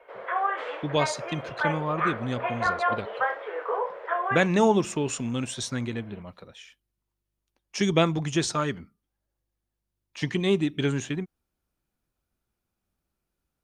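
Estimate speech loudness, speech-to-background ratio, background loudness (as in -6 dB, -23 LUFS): -27.5 LUFS, 2.0 dB, -29.5 LUFS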